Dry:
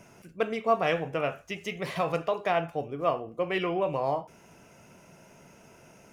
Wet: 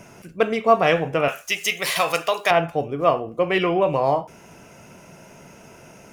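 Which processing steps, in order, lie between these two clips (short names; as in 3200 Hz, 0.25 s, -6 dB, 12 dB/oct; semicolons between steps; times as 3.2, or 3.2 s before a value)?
1.28–2.51 tilt +4.5 dB/oct; gain +8.5 dB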